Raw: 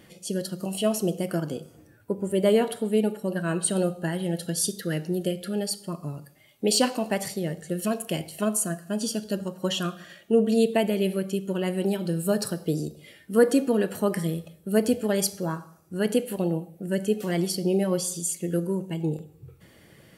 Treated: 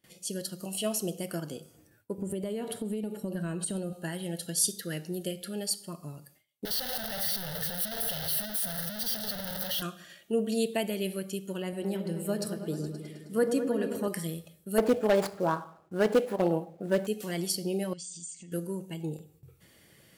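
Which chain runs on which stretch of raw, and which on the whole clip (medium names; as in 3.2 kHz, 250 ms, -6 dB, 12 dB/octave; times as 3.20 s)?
2.18–3.93 s: compression 10:1, threshold -29 dBFS + bass shelf 490 Hz +10.5 dB
6.65–9.82 s: one-bit comparator + treble shelf 10 kHz +4 dB + static phaser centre 1.6 kHz, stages 8
11.62–14.08 s: treble shelf 2.4 kHz -7.5 dB + delay with an opening low-pass 105 ms, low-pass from 750 Hz, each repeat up 1 oct, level -6 dB
14.78–17.07 s: median filter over 15 samples + peaking EQ 810 Hz +13.5 dB 2.7 oct + hard clipper -8.5 dBFS
17.93–18.52 s: high-order bell 730 Hz -13.5 dB 2.3 oct + compression, threshold -37 dBFS + brick-wall FIR low-pass 8.9 kHz
whole clip: gate with hold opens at -44 dBFS; treble shelf 2.6 kHz +9 dB; trim -8 dB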